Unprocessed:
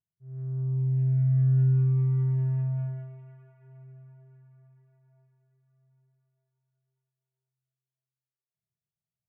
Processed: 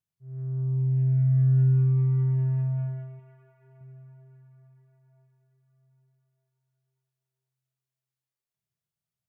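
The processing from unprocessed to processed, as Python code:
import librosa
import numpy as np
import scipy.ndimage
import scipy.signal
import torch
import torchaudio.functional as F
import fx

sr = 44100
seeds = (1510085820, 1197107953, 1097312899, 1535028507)

y = fx.peak_eq(x, sr, hz=130.0, db=-6.5, octaves=0.77, at=(3.19, 3.81))
y = F.gain(torch.from_numpy(y), 1.5).numpy()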